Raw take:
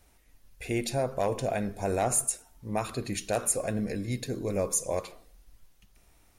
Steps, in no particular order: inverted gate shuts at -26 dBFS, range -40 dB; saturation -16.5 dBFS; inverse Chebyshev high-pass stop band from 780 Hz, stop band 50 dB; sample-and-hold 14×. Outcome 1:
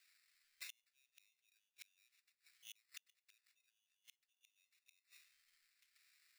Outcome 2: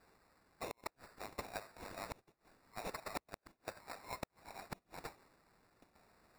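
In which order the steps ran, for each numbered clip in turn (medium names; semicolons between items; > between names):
saturation > inverted gate > sample-and-hold > inverse Chebyshev high-pass; saturation > inverse Chebyshev high-pass > inverted gate > sample-and-hold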